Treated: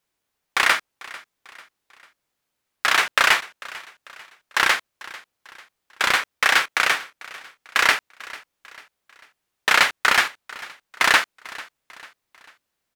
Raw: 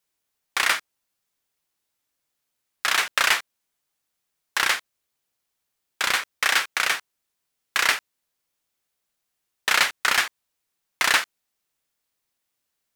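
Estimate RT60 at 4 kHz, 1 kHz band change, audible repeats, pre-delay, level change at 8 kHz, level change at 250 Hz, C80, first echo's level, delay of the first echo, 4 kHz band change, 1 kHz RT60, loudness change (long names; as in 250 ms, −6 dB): no reverb audible, +5.0 dB, 3, no reverb audible, −1.0 dB, +5.5 dB, no reverb audible, −19.5 dB, 445 ms, +1.5 dB, no reverb audible, +3.0 dB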